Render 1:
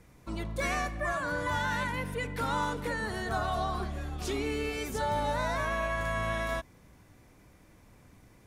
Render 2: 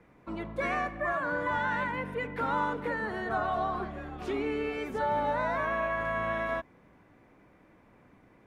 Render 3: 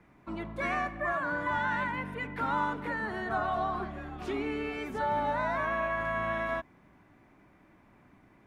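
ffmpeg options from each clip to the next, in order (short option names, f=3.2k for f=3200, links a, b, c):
-filter_complex "[0:a]acrossover=split=170 2700:gain=0.251 1 0.1[a][b][c];[a][b][c]amix=inputs=3:normalize=0,volume=2dB"
-af "equalizer=f=490:t=o:w=0.25:g=-11"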